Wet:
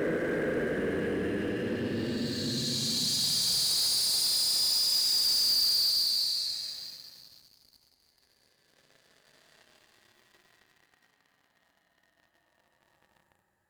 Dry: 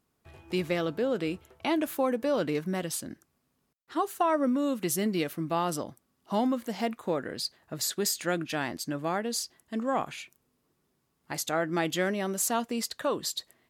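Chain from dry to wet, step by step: Paulstretch 42×, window 0.05 s, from 7.32 s; waveshaping leveller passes 3; trim -2.5 dB

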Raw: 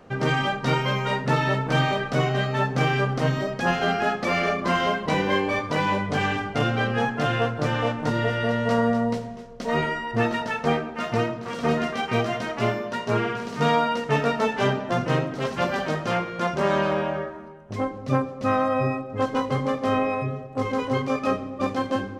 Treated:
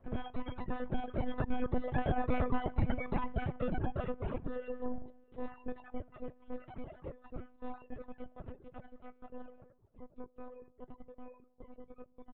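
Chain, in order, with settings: Doppler pass-by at 4.50 s, 9 m/s, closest 2.3 m; tempo 1.8×; bass shelf 100 Hz -10 dB; delay 601 ms -22.5 dB; monotone LPC vocoder at 8 kHz 250 Hz; reverb removal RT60 1.4 s; compression 6:1, threshold -40 dBFS, peak gain reduction 18.5 dB; tilt shelf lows +9.5 dB, about 890 Hz; trim +7.5 dB

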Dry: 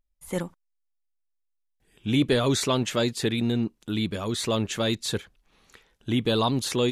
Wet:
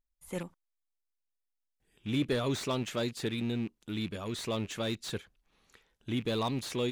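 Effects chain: rattle on loud lows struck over -32 dBFS, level -31 dBFS; slew-rate limiter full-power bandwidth 180 Hz; trim -8 dB

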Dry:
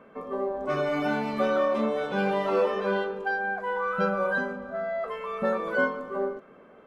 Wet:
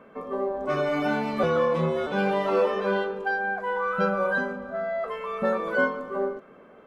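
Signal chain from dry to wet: 1.43–2.07 s: frequency shift -58 Hz; trim +1.5 dB

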